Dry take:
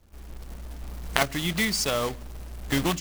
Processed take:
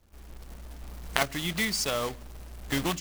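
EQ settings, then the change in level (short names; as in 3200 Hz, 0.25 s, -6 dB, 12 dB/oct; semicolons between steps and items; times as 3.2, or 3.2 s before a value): low shelf 420 Hz -2.5 dB; -2.5 dB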